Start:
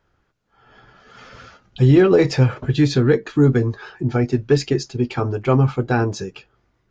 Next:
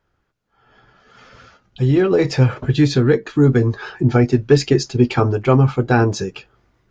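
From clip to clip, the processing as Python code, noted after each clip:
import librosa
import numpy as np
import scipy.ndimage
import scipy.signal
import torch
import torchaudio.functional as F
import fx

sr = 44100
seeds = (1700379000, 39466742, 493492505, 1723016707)

y = fx.rider(x, sr, range_db=5, speed_s=0.5)
y = F.gain(torch.from_numpy(y), 2.0).numpy()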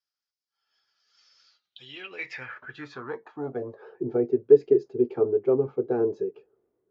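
y = fx.filter_sweep_bandpass(x, sr, from_hz=5100.0, to_hz=420.0, start_s=1.39, end_s=4.02, q=5.5)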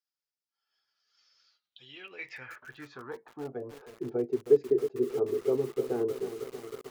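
y = fx.echo_crushed(x, sr, ms=315, feedback_pct=80, bits=6, wet_db=-10.5)
y = F.gain(torch.from_numpy(y), -6.0).numpy()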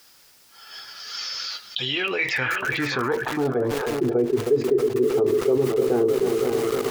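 y = x + 10.0 ** (-13.5 / 20.0) * np.pad(x, (int(528 * sr / 1000.0), 0))[:len(x)]
y = fx.env_flatten(y, sr, amount_pct=70)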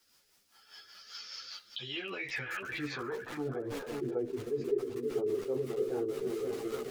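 y = fx.rotary(x, sr, hz=5.0)
y = fx.ensemble(y, sr)
y = F.gain(torch.from_numpy(y), -8.5).numpy()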